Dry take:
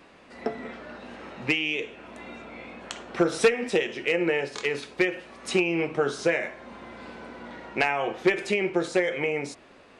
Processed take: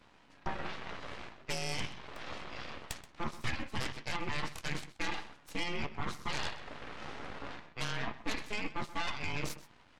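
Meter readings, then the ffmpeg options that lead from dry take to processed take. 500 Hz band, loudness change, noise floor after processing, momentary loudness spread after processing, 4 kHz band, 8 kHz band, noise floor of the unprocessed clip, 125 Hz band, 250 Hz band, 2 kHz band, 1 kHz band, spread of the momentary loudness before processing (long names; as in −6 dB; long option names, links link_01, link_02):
−20.0 dB, −13.5 dB, −62 dBFS, 9 LU, −6.0 dB, −6.0 dB, −53 dBFS, −3.5 dB, −14.0 dB, −11.0 dB, −6.5 dB, 18 LU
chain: -filter_complex "[0:a]afftfilt=real='real(if(between(b,1,1008),(2*floor((b-1)/24)+1)*24-b,b),0)':imag='imag(if(between(b,1,1008),(2*floor((b-1)/24)+1)*24-b,b),0)*if(between(b,1,1008),-1,1)':win_size=2048:overlap=0.75,lowpass=8800,areverse,acompressor=threshold=-35dB:ratio=6,areverse,aeval=exprs='0.0841*(cos(1*acos(clip(val(0)/0.0841,-1,1)))-cos(1*PI/2))+0.0299*(cos(3*acos(clip(val(0)/0.0841,-1,1)))-cos(3*PI/2))+0.0266*(cos(6*acos(clip(val(0)/0.0841,-1,1)))-cos(6*PI/2))+0.00211*(cos(7*acos(clip(val(0)/0.0841,-1,1)))-cos(7*PI/2))':channel_layout=same,asplit=2[link_01][link_02];[link_02]adelay=14,volume=-13.5dB[link_03];[link_01][link_03]amix=inputs=2:normalize=0,asplit=2[link_04][link_05];[link_05]adelay=128.3,volume=-15dB,highshelf=frequency=4000:gain=-2.89[link_06];[link_04][link_06]amix=inputs=2:normalize=0"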